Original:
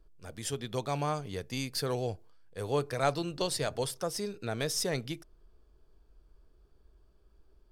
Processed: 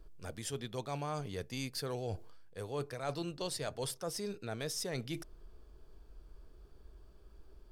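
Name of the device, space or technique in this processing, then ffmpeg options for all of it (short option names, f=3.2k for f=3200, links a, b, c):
compression on the reversed sound: -af "areverse,acompressor=threshold=-44dB:ratio=4,areverse,volume=6dB"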